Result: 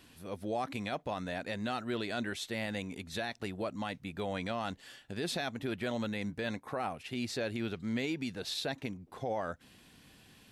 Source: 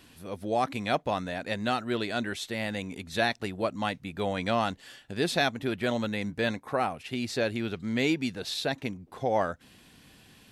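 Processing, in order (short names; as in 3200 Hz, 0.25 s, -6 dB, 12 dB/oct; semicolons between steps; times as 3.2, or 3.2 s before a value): limiter -22 dBFS, peak gain reduction 9.5 dB; gain -3.5 dB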